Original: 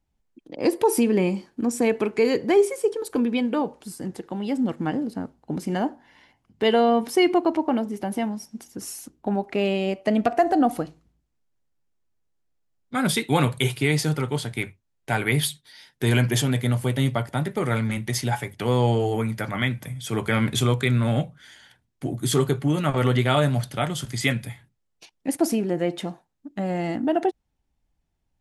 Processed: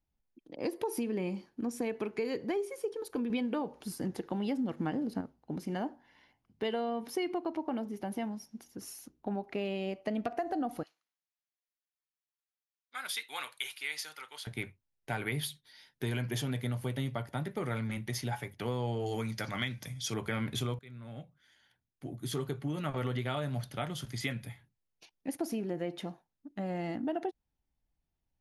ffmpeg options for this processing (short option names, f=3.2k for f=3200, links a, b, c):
-filter_complex "[0:a]asettb=1/sr,asplit=3[a][b][c];[a]atrim=end=10.834[d];[b]atrim=start=10.83:end=14.47,asetpts=PTS-STARTPTS,afade=t=in:d=0.004:c=qsin,afade=t=out:st=3.636:d=0.004:c=qsin,highpass=1.4k[e];[c]atrim=start=14.466[f];[d][e]acrossfade=d=0.004:c1=hsin:c2=qsin[g];[g][f]acrossfade=d=0.004:c1=qsin:c2=hsin,asettb=1/sr,asplit=3[h][i][j];[h]atrim=end=19.064[k];[i]atrim=start=19.06:end=20.14,asetpts=PTS-STARTPTS,afade=t=in:d=0.004:c=qsin,afade=t=out:st=1.076:d=0.004:c=qsin,equalizer=f=5.5k:w=0.9:g=14.5[l];[j]atrim=start=20.136[m];[k][l]acrossfade=d=0.004:c1=hsin:c2=qsin[n];[n][m]acrossfade=d=0.004:c1=qsin:c2=hsin,asplit=4[o][p][q][r];[o]atrim=end=3.302[s];[p]atrim=start=3.298:end=5.212,asetpts=PTS-STARTPTS,volume=7dB[t];[q]atrim=start=5.208:end=20.79,asetpts=PTS-STARTPTS,afade=t=out:st=15.578:d=0.004:c=hsin:silence=0.0630957[u];[r]atrim=start=20.79,asetpts=PTS-STARTPTS,afade=t=in:d=2.27:silence=0.0630957[v];[s][t]acrossfade=d=0.004:c1=hsin:c2=hsin[w];[u][v]concat=n=2:v=0:a=1[x];[w][x]acrossfade=d=0.004:c1=hsin:c2=hsin,equalizer=f=7.9k:t=o:w=0.23:g=-12,acompressor=threshold=-21dB:ratio=6,volume=-9dB"